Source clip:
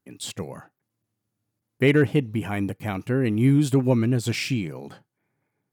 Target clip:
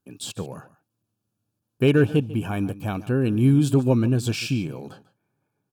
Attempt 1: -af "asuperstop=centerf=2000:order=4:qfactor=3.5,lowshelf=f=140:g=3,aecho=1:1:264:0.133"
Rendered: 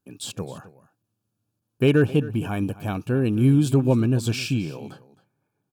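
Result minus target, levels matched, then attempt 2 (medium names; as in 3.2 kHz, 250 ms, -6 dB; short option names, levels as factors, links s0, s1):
echo 119 ms late
-af "asuperstop=centerf=2000:order=4:qfactor=3.5,lowshelf=f=140:g=3,aecho=1:1:145:0.133"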